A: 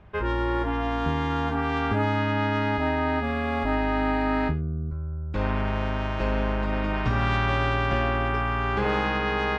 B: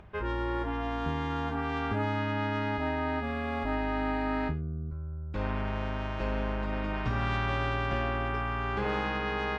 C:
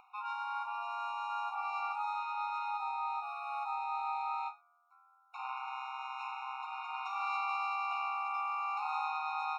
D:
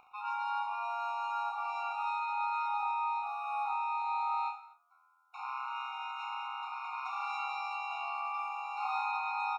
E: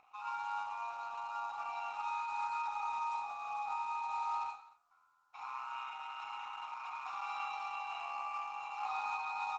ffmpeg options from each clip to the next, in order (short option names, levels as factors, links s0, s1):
-af "acompressor=mode=upward:threshold=0.01:ratio=2.5,volume=0.501"
-af "afftfilt=real='re*eq(mod(floor(b*sr/1024/720),2),1)':imag='im*eq(mod(floor(b*sr/1024/720),2),1)':win_size=1024:overlap=0.75"
-filter_complex "[0:a]asplit=2[s0][s1];[s1]adelay=16,volume=0.251[s2];[s0][s2]amix=inputs=2:normalize=0,asplit=2[s3][s4];[s4]aecho=0:1:30|67.5|114.4|173|246.2:0.631|0.398|0.251|0.158|0.1[s5];[s3][s5]amix=inputs=2:normalize=0,volume=0.891"
-af "acrusher=bits=5:mode=log:mix=0:aa=0.000001,aresample=16000,aresample=44100,volume=0.708" -ar 48000 -c:a libopus -b:a 12k